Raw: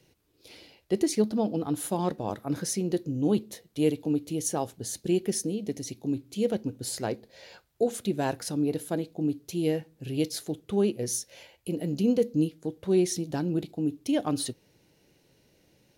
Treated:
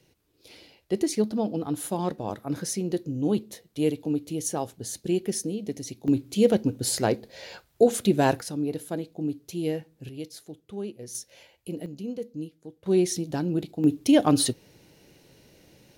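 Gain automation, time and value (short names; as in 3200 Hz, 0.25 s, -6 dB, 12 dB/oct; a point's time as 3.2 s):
0 dB
from 6.08 s +7 dB
from 8.41 s -1.5 dB
from 10.09 s -9.5 dB
from 11.15 s -3 dB
from 11.86 s -10 dB
from 12.86 s +1.5 dB
from 13.84 s +8 dB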